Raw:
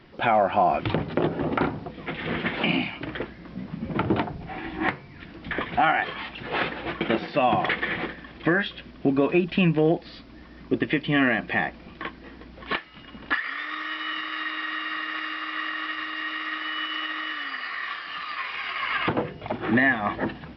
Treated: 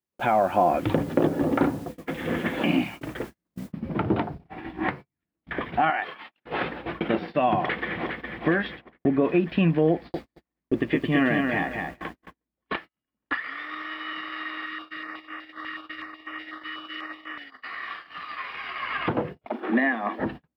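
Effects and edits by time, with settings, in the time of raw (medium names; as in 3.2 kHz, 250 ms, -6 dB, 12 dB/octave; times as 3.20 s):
0.55–2.84 s: small resonant body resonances 290/520/1700/3400 Hz, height 7 dB
3.72 s: noise floor step -46 dB -70 dB
5.90–6.45 s: high-pass 650 Hz 6 dB/octave
7.59–8.29 s: echo throw 410 ms, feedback 65%, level -6 dB
8.81–9.25 s: treble shelf 3.2 kHz -10 dB
9.92–12.41 s: bit-crushed delay 218 ms, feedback 35%, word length 8-bit, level -4 dB
14.66–17.64 s: step-sequenced notch 8.1 Hz 700–4200 Hz
19.45–20.19 s: elliptic high-pass 220 Hz
whole clip: high-pass 47 Hz; gate -34 dBFS, range -43 dB; treble shelf 2.1 kHz -8.5 dB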